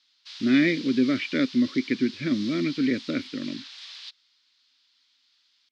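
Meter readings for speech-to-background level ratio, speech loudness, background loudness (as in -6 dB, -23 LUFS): 15.0 dB, -25.0 LUFS, -40.0 LUFS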